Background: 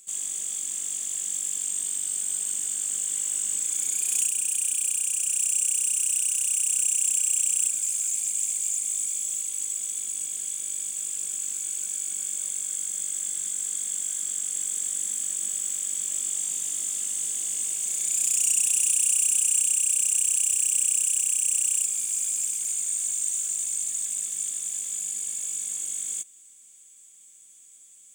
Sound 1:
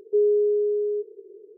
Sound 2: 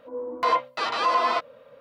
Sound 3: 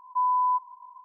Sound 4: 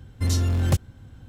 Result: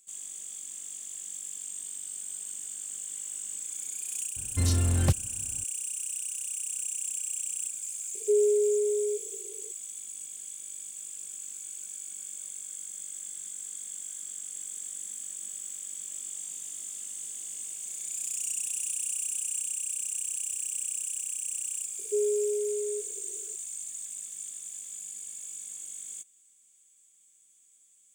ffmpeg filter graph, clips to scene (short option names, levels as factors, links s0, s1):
-filter_complex "[1:a]asplit=2[s0][s1];[0:a]volume=0.316[s2];[s0]highpass=390[s3];[4:a]atrim=end=1.28,asetpts=PTS-STARTPTS,volume=0.708,afade=t=in:d=0.004:c=hsin,afade=t=out:st=1.276:d=0.004:c=hsin,adelay=4360[s4];[s3]atrim=end=1.57,asetpts=PTS-STARTPTS,volume=0.891,afade=t=in:d=0.004:c=hsin,afade=t=out:st=1.566:d=0.004:c=hsin,adelay=8150[s5];[s1]atrim=end=1.57,asetpts=PTS-STARTPTS,volume=0.422,afade=t=in:d=0.004:c=hsin,afade=t=out:st=1.566:d=0.004:c=hsin,adelay=21990[s6];[s2][s4][s5][s6]amix=inputs=4:normalize=0"